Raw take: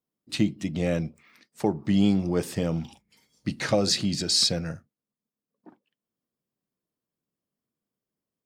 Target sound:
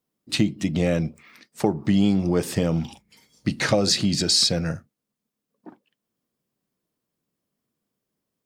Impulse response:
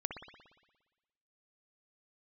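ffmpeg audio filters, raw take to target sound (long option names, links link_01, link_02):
-af "acompressor=threshold=-26dB:ratio=2,volume=7dB"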